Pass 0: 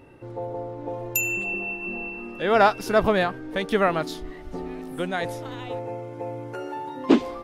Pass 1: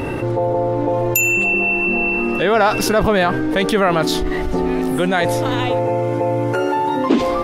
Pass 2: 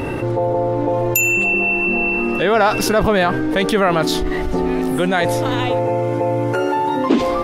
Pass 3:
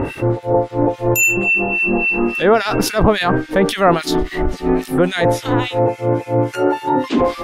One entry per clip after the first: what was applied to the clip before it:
envelope flattener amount 70%
no processing that can be heard
two-band tremolo in antiphase 3.6 Hz, depth 100%, crossover 1,800 Hz; level +5.5 dB

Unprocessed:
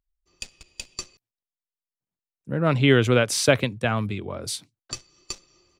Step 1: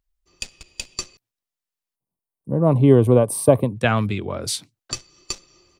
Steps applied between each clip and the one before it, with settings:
gain on a spectral selection 0:01.96–0:03.76, 1,200–8,200 Hz −21 dB
level +5 dB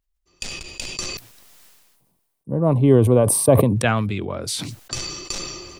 level that may fall only so fast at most 36 dB per second
level −1.5 dB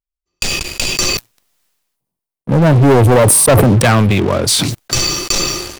leveller curve on the samples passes 5
level −3.5 dB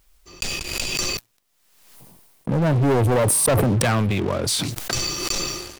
background raised ahead of every attack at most 47 dB per second
level −9.5 dB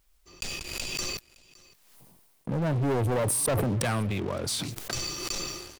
single-tap delay 564 ms −23.5 dB
level −8 dB

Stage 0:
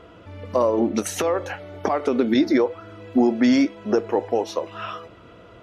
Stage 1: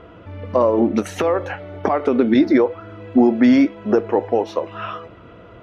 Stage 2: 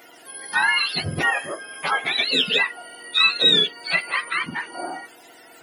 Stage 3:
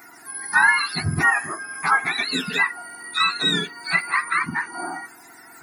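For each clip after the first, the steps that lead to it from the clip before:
bass and treble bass +2 dB, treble −13 dB; level +3.5 dB
frequency axis turned over on the octave scale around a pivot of 970 Hz; surface crackle 33 per second −51 dBFS
phaser with its sweep stopped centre 1,300 Hz, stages 4; level +5.5 dB

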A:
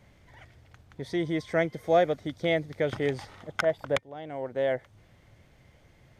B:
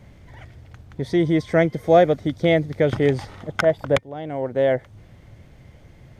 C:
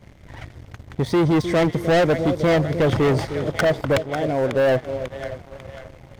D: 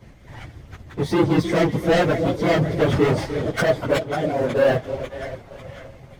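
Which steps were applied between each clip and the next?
low-shelf EQ 460 Hz +7.5 dB; level +5 dB
echo with a time of its own for lows and highs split 630 Hz, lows 307 ms, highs 545 ms, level −15 dB; leveller curve on the samples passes 2; soft clipping −14 dBFS, distortion −11 dB
random phases in long frames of 50 ms

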